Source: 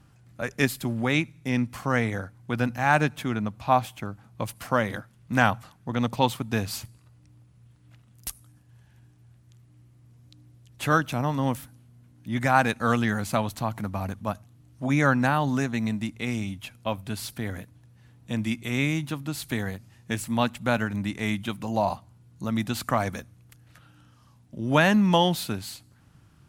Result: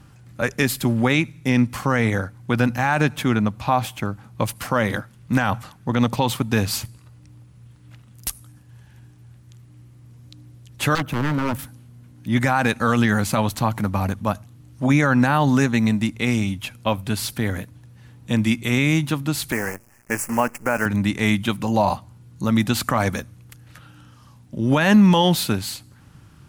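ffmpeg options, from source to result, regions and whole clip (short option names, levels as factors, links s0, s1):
-filter_complex "[0:a]asettb=1/sr,asplit=3[s0][s1][s2];[s0]atrim=end=10.954[s3];[s1]atrim=start=10.95:end=11.59,asetpts=PTS-STARTPTS,afade=t=in:d=0.004:c=qsin,afade=t=out:st=0.636:d=0.004:c=qsin,equalizer=f=5600:t=o:w=2.8:g=-12.5,aeval=exprs='0.0562*(abs(mod(val(0)/0.0562+3,4)-2)-1)':c=same[s4];[s2]atrim=start=11.586[s5];[s3][s4]acrossfade=d=0.004:c1=hsin:c2=qsin[s6];[s6][s5]acrossfade=d=0.004:c1=qsin:c2=hsin,asettb=1/sr,asplit=3[s7][s8][s9];[s7]atrim=end=19.524[s10];[s8]atrim=start=19.52:end=20.86,asetpts=PTS-STARTPTS,afade=t=in:d=0.004:c=qsin,afade=t=out:st=1.336:d=0.004:c=qsin,bass=f=250:g=-11,treble=f=4000:g=0,acrusher=bits=7:dc=4:mix=0:aa=0.000001,asuperstop=centerf=3700:order=4:qfactor=1.2[s11];[s9]atrim=start=20.856[s12];[s10][s11]acrossfade=d=0.004:c1=hsin:c2=qsin[s13];[s13][s12]acrossfade=d=0.004:c1=qsin:c2=hsin,bandreject=f=680:w=12,alimiter=level_in=5.31:limit=0.891:release=50:level=0:latency=1,volume=0.501"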